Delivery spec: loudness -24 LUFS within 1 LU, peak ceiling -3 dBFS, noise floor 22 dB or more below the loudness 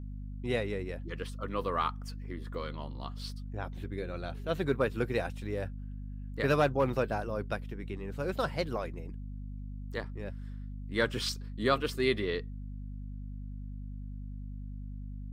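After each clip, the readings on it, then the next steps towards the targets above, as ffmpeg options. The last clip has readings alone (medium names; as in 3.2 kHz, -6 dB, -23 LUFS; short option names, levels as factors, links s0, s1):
hum 50 Hz; highest harmonic 250 Hz; hum level -38 dBFS; loudness -35.0 LUFS; peak level -13.0 dBFS; loudness target -24.0 LUFS
-> -af "bandreject=f=50:t=h:w=6,bandreject=f=100:t=h:w=6,bandreject=f=150:t=h:w=6,bandreject=f=200:t=h:w=6,bandreject=f=250:t=h:w=6"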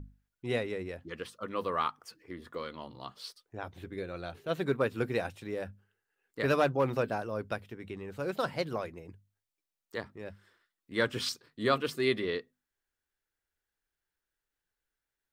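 hum not found; loudness -34.0 LUFS; peak level -13.5 dBFS; loudness target -24.0 LUFS
-> -af "volume=3.16"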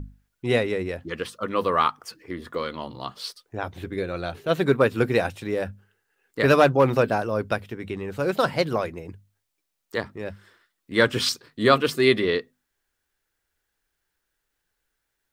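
loudness -24.0 LUFS; peak level -3.5 dBFS; noise floor -79 dBFS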